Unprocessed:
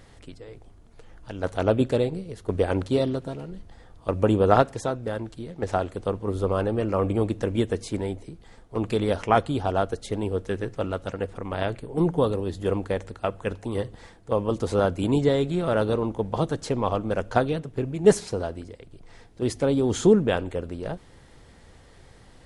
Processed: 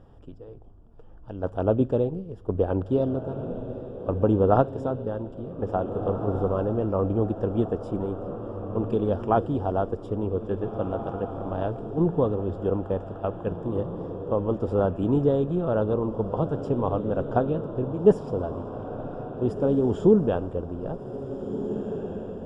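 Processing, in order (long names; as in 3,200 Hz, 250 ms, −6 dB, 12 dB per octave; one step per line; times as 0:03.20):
moving average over 21 samples
feedback delay with all-pass diffusion 1,764 ms, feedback 44%, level −9.5 dB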